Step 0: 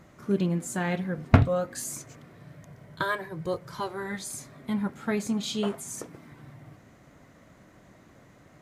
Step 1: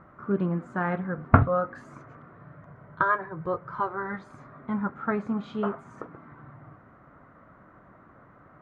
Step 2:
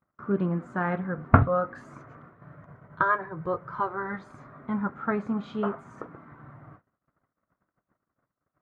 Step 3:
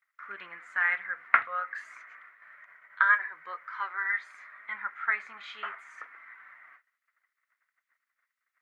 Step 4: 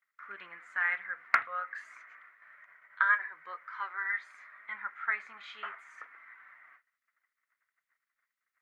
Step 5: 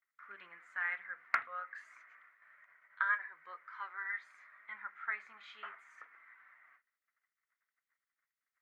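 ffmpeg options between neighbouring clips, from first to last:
ffmpeg -i in.wav -af "lowpass=frequency=1300:width_type=q:width=3.5,volume=-1dB" out.wav
ffmpeg -i in.wav -af "agate=range=-38dB:threshold=-49dB:ratio=16:detection=peak" out.wav
ffmpeg -i in.wav -af "highpass=frequency=2000:width_type=q:width=5,volume=2dB" out.wav
ffmpeg -i in.wav -af "volume=8dB,asoftclip=hard,volume=-8dB,volume=-3.5dB" out.wav
ffmpeg -i in.wav -af "bandreject=frequency=63.83:width_type=h:width=4,bandreject=frequency=127.66:width_type=h:width=4,bandreject=frequency=191.49:width_type=h:width=4,bandreject=frequency=255.32:width_type=h:width=4,bandreject=frequency=319.15:width_type=h:width=4,bandreject=frequency=382.98:width_type=h:width=4,bandreject=frequency=446.81:width_type=h:width=4,volume=-6.5dB" out.wav

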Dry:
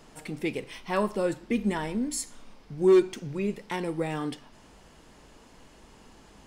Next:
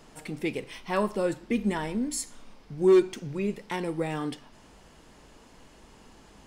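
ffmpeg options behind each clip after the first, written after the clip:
ffmpeg -i in.wav -af anull out.wav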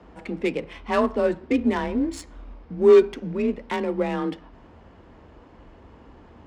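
ffmpeg -i in.wav -af "afreqshift=32,adynamicsmooth=sensitivity=4:basefreq=1900,volume=5.5dB" out.wav

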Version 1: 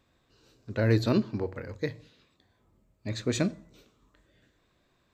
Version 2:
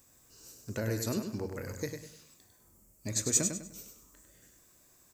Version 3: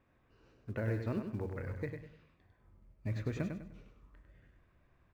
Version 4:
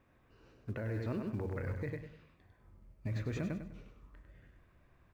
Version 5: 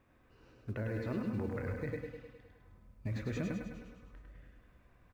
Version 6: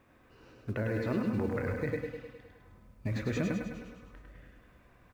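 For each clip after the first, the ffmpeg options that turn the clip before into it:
ffmpeg -i in.wav -af "acompressor=threshold=-35dB:ratio=2.5,aexciter=amount=13.8:drive=4.3:freq=5600,aecho=1:1:100|200|300|400:0.473|0.147|0.0455|0.0141" out.wav
ffmpeg -i in.wav -filter_complex "[0:a]lowpass=frequency=2600:width=0.5412,lowpass=frequency=2600:width=1.3066,asubboost=boost=3.5:cutoff=140,asplit=2[link_01][link_02];[link_02]acrusher=bits=5:mode=log:mix=0:aa=0.000001,volume=-11dB[link_03];[link_01][link_03]amix=inputs=2:normalize=0,volume=-4.5dB" out.wav
ffmpeg -i in.wav -af "alimiter=level_in=8dB:limit=-24dB:level=0:latency=1:release=39,volume=-8dB,volume=3dB" out.wav
ffmpeg -i in.wav -af "aecho=1:1:104|208|312|416|520|624|728|832:0.531|0.313|0.185|0.109|0.0643|0.038|0.0224|0.0132" out.wav
ffmpeg -i in.wav -af "lowshelf=frequency=100:gain=-7,volume=6.5dB" out.wav

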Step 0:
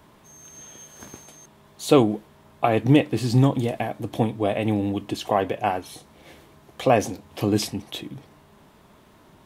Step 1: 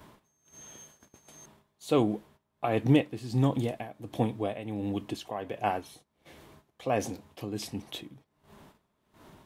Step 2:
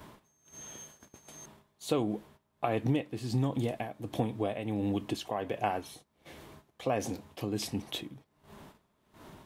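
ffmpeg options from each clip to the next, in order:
ffmpeg -i in.wav -af "acompressor=mode=upward:threshold=-41dB:ratio=2.5,tremolo=f=1.4:d=0.69,agate=range=-13dB:threshold=-50dB:ratio=16:detection=peak,volume=-5dB" out.wav
ffmpeg -i in.wav -af "acompressor=threshold=-29dB:ratio=4,volume=2.5dB" out.wav

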